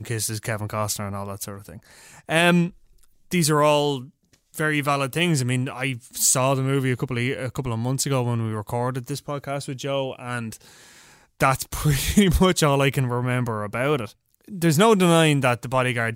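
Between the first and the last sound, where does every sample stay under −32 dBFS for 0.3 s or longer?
0:01.77–0:02.29
0:02.68–0:03.31
0:04.04–0:04.54
0:10.55–0:11.40
0:14.06–0:14.52

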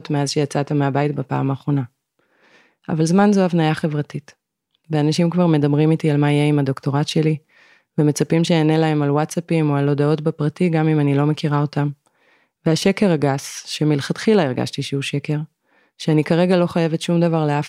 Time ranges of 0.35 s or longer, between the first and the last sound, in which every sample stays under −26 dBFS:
0:01.85–0:02.89
0:04.28–0:04.91
0:07.36–0:07.98
0:11.91–0:12.66
0:15.44–0:16.01

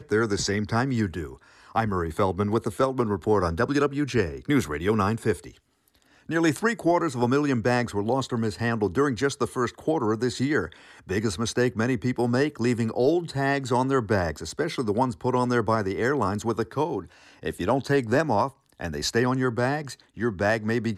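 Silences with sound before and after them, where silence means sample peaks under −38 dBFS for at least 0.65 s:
0:05.49–0:06.29

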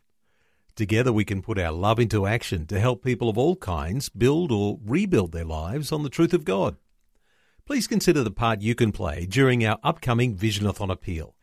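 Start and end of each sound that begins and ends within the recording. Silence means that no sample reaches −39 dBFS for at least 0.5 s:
0:00.77–0:06.75

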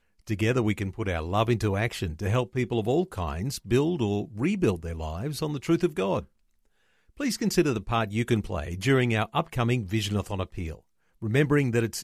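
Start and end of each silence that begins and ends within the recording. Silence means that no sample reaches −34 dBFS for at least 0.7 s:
0:06.21–0:07.20

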